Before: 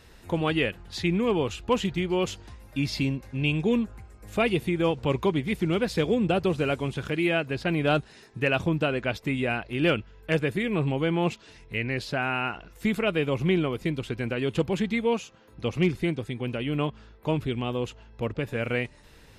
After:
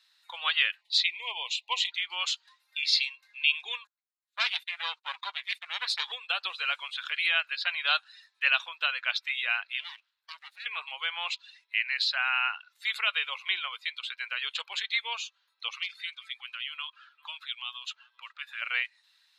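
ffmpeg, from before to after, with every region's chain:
ffmpeg -i in.wav -filter_complex "[0:a]asettb=1/sr,asplit=3[link_01][link_02][link_03];[link_01]atrim=end=0.814[link_04];[link_02]atrim=start=0.81:end=1.92,asetpts=PTS-STARTPTS,afade=type=in:duration=0.004:curve=qsin,afade=type=out:start_time=1.106:duration=0.004:curve=qsin,asuperstop=centerf=1400:order=12:qfactor=1.7,equalizer=frequency=620:width=7.9:gain=6,bandreject=frequency=50:width_type=h:width=6,bandreject=frequency=100:width_type=h:width=6,bandreject=frequency=150:width_type=h:width=6,bandreject=frequency=200:width_type=h:width=6,bandreject=frequency=250:width_type=h:width=6,bandreject=frequency=300:width_type=h:width=6,bandreject=frequency=350:width_type=h:width=6,bandreject=frequency=400:width_type=h:width=6[link_05];[link_03]atrim=start=1.916[link_06];[link_04][link_05]acrossfade=duration=0.004:curve1=hsin:curve2=qsin[link_07];[link_07][link_06]acrossfade=duration=0.004:curve1=qsin:curve2=hsin,asettb=1/sr,asplit=3[link_08][link_09][link_10];[link_08]atrim=end=3.874[link_11];[link_09]atrim=start=3.87:end=6.12,asetpts=PTS-STARTPTS,afade=type=in:duration=0.004:curve=qsin,afade=type=out:start_time=2.246:duration=0.004:curve=qsin,agate=range=-29dB:threshold=-37dB:ratio=16:release=100:detection=peak,aeval=exprs='clip(val(0),-1,0.015)':channel_layout=same,lowshelf=frequency=230:gain=-7[link_12];[link_10]atrim=start=6.116[link_13];[link_11][link_12]acrossfade=duration=0.004:curve1=hsin:curve2=qsin[link_14];[link_14][link_13]acrossfade=duration=0.004:curve1=qsin:curve2=hsin,asettb=1/sr,asplit=3[link_15][link_16][link_17];[link_15]atrim=end=9.804[link_18];[link_16]atrim=start=9.8:end=10.66,asetpts=PTS-STARTPTS,afade=type=in:duration=0.004:curve=qsin,afade=type=out:start_time=0.856:duration=0.004:curve=qsin,agate=range=-33dB:threshold=-44dB:ratio=3:release=100:detection=peak,acompressor=threshold=-34dB:ratio=8:attack=3.2:release=140:knee=1:detection=peak,aeval=exprs='abs(val(0))':channel_layout=same[link_19];[link_17]atrim=start=10.656[link_20];[link_18][link_19]acrossfade=duration=0.004:curve1=hsin:curve2=qsin[link_21];[link_21][link_20]acrossfade=duration=0.004:curve1=qsin:curve2=hsin,asettb=1/sr,asplit=3[link_22][link_23][link_24];[link_22]atrim=end=15.734[link_25];[link_23]atrim=start=15.73:end=18.62,asetpts=PTS-STARTPTS,afade=type=in:duration=0.004:curve=qsin,afade=type=out:start_time=2.886:duration=0.004:curve=qsin,equalizer=frequency=1300:width=1.1:gain=7.5,acrossover=split=180|3000[link_26][link_27][link_28];[link_27]acompressor=threshold=-40dB:ratio=3:attack=3.2:release=140:knee=2.83:detection=peak[link_29];[link_26][link_29][link_28]amix=inputs=3:normalize=0,aecho=1:1:392:0.119,atrim=end_sample=127449[link_30];[link_24]atrim=start=18.616[link_31];[link_25][link_30]acrossfade=duration=0.004:curve1=hsin:curve2=qsin[link_32];[link_32][link_31]acrossfade=duration=0.004:curve1=qsin:curve2=hsin,highpass=frequency=1100:width=0.5412,highpass=frequency=1100:width=1.3066,afftdn=noise_reduction=16:noise_floor=-47,equalizer=frequency=4000:width_type=o:width=0.54:gain=14.5,volume=1.5dB" out.wav

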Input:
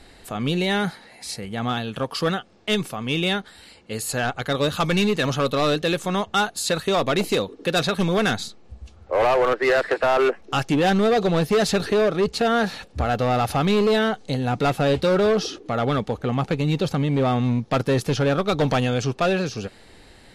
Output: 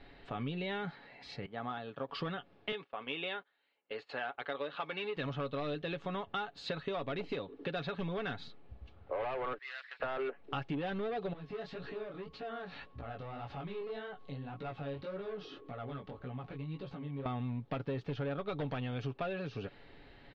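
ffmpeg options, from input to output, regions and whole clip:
ffmpeg -i in.wav -filter_complex "[0:a]asettb=1/sr,asplit=3[link_01][link_02][link_03];[link_01]atrim=end=1.464[link_04];[link_02]atrim=start=1.46:end=2.09,asetpts=PTS-STARTPTS,afade=type=in:duration=0.004:curve=qsin,afade=type=out:start_time=0.626:duration=0.004:curve=qsin,agate=range=-33dB:threshold=-31dB:ratio=3:release=100:detection=peak,highpass=frequency=460:poles=1,equalizer=frequency=2800:width=1.3:gain=-10[link_05];[link_03]atrim=start=2.086[link_06];[link_04][link_05]acrossfade=duration=0.004:curve1=hsin:curve2=qsin[link_07];[link_07][link_06]acrossfade=duration=0.004:curve1=qsin:curve2=hsin,asettb=1/sr,asplit=3[link_08][link_09][link_10];[link_08]atrim=end=2.724[link_11];[link_09]atrim=start=2.72:end=5.17,asetpts=PTS-STARTPTS,afade=type=in:duration=0.004:curve=qsin,afade=type=out:start_time=2.446:duration=0.004:curve=qsin,highpass=440,lowpass=4100,agate=range=-20dB:threshold=-40dB:ratio=16:release=100:detection=peak[link_12];[link_10]atrim=start=5.166[link_13];[link_11][link_12]acrossfade=duration=0.004:curve1=hsin:curve2=qsin[link_14];[link_14][link_13]acrossfade=duration=0.004:curve1=qsin:curve2=hsin,asettb=1/sr,asplit=3[link_15][link_16][link_17];[link_15]atrim=end=9.584[link_18];[link_16]atrim=start=9.58:end=10,asetpts=PTS-STARTPTS,afade=type=in:duration=0.004:curve=qsin,afade=type=out:start_time=0.416:duration=0.004:curve=qsin,highpass=1100,aderivative[link_19];[link_17]atrim=start=9.996[link_20];[link_18][link_19]acrossfade=duration=0.004:curve1=hsin:curve2=qsin[link_21];[link_21][link_20]acrossfade=duration=0.004:curve1=qsin:curve2=hsin,asettb=1/sr,asplit=3[link_22][link_23][link_24];[link_22]atrim=end=11.334[link_25];[link_23]atrim=start=11.33:end=17.26,asetpts=PTS-STARTPTS,afade=type=in:duration=0.004:curve=qsin,afade=type=out:start_time=5.926:duration=0.004:curve=qsin,acompressor=threshold=-31dB:ratio=6:attack=3.2:release=140:knee=1:detection=peak,flanger=delay=15.5:depth=6.6:speed=1.8,aeval=exprs='val(0)+0.00112*sin(2*PI*1100*n/s)':channel_layout=same[link_26];[link_24]atrim=start=17.256[link_27];[link_25][link_26]acrossfade=duration=0.004:curve1=hsin:curve2=qsin[link_28];[link_28][link_27]acrossfade=duration=0.004:curve1=qsin:curve2=hsin,lowpass=frequency=3500:width=0.5412,lowpass=frequency=3500:width=1.3066,aecho=1:1:7.1:0.41,acompressor=threshold=-27dB:ratio=6,volume=-8dB" out.wav

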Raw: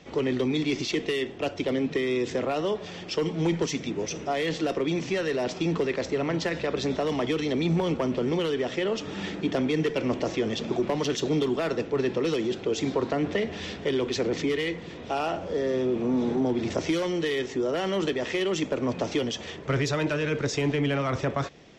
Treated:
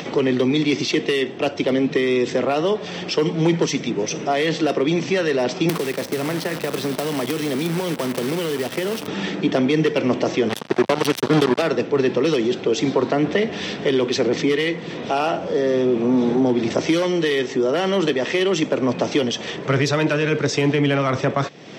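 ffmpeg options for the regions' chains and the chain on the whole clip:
ffmpeg -i in.wav -filter_complex "[0:a]asettb=1/sr,asplit=3[link_01][link_02][link_03];[link_01]atrim=end=5.694[link_04];[link_02]atrim=start=5.69:end=9.08,asetpts=PTS-STARTPTS,afade=type=in:duration=0.004:curve=qsin,afade=type=out:start_time=3.386:duration=0.004:curve=qsin,acrusher=bits=6:dc=4:mix=0:aa=0.000001,acrossover=split=230|1600[link_05][link_06][link_07];[link_05]acompressor=threshold=-36dB:ratio=4[link_08];[link_06]acompressor=threshold=-31dB:ratio=4[link_09];[link_07]acompressor=threshold=-37dB:ratio=4[link_10];[link_08][link_09][link_10]amix=inputs=3:normalize=0,aeval=exprs='(mod(8.91*val(0)+1,2)-1)/8.91':channel_layout=same[link_11];[link_03]atrim=start=9.076[link_12];[link_04][link_11]acrossfade=duration=0.004:curve1=hsin:curve2=qsin[link_13];[link_13][link_12]acrossfade=duration=0.004:curve1=qsin:curve2=hsin,asettb=1/sr,asplit=3[link_14][link_15][link_16];[link_14]atrim=end=10.494[link_17];[link_15]atrim=start=10.49:end=11.62,asetpts=PTS-STARTPTS,afade=type=in:duration=0.004:curve=qsin,afade=type=out:start_time=1.126:duration=0.004:curve=qsin,lowpass=7300,acrusher=bits=3:mix=0:aa=0.5[link_18];[link_16]atrim=start=11.616[link_19];[link_17][link_18]acrossfade=duration=0.004:curve1=hsin:curve2=qsin[link_20];[link_20][link_19]acrossfade=duration=0.004:curve1=qsin:curve2=hsin,highpass=frequency=120:width=0.5412,highpass=frequency=120:width=1.3066,bandreject=frequency=6900:width=11,acompressor=mode=upward:threshold=-30dB:ratio=2.5,volume=7.5dB" out.wav

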